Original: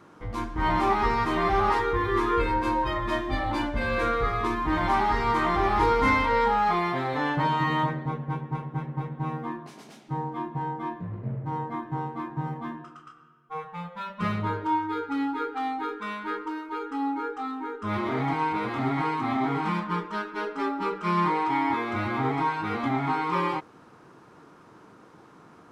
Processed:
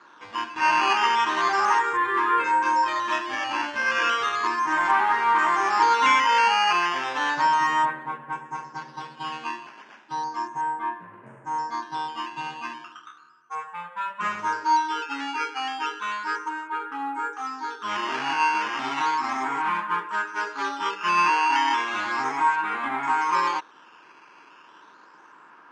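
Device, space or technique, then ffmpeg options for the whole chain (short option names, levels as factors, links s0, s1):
circuit-bent sampling toy: -af "acrusher=samples=8:mix=1:aa=0.000001:lfo=1:lforange=8:lforate=0.34,highpass=440,equalizer=f=470:t=q:w=4:g=-6,equalizer=f=690:t=q:w=4:g=-5,equalizer=f=980:t=q:w=4:g=8,equalizer=f=1600:t=q:w=4:g=10,equalizer=f=2700:t=q:w=4:g=7,equalizer=f=4000:t=q:w=4:g=-4,lowpass=f=5800:w=0.5412,lowpass=f=5800:w=1.3066"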